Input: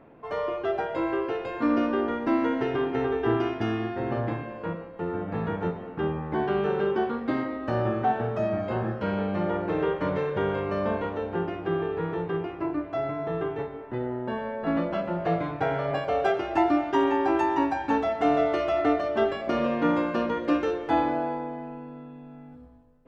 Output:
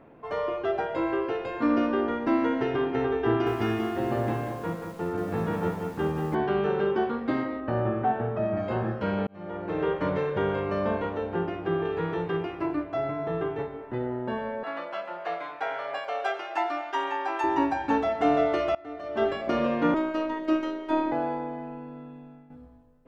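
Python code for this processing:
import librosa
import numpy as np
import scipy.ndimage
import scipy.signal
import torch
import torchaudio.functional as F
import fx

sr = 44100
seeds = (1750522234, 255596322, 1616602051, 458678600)

y = fx.echo_crushed(x, sr, ms=185, feedback_pct=35, bits=8, wet_db=-6, at=(3.28, 6.35))
y = fx.air_absorb(y, sr, metres=310.0, at=(7.6, 8.57))
y = fx.high_shelf(y, sr, hz=2400.0, db=7.5, at=(11.85, 12.84))
y = fx.highpass(y, sr, hz=790.0, slope=12, at=(14.63, 17.44))
y = fx.robotise(y, sr, hz=315.0, at=(19.94, 21.12))
y = fx.edit(y, sr, fx.fade_in_span(start_s=9.27, length_s=0.65),
    fx.fade_in_from(start_s=18.75, length_s=0.52, curve='qua', floor_db=-22.0),
    fx.fade_out_to(start_s=22.04, length_s=0.46, curve='qsin', floor_db=-10.5), tone=tone)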